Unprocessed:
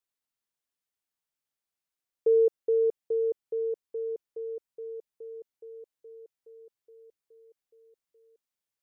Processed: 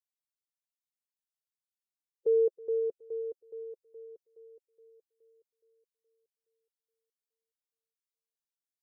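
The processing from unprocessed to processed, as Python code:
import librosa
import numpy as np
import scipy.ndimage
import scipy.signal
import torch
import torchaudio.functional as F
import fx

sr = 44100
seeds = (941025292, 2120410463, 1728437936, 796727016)

p1 = fx.bin_expand(x, sr, power=2.0)
p2 = p1 + fx.echo_single(p1, sr, ms=321, db=-22.0, dry=0)
y = p2 * 10.0 ** (-3.0 / 20.0)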